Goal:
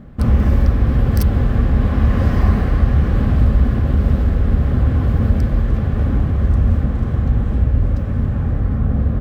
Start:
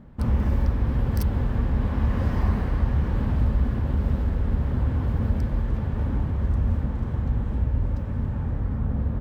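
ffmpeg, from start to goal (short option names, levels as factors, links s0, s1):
-af "asuperstop=centerf=920:order=4:qfactor=6.8,volume=2.66"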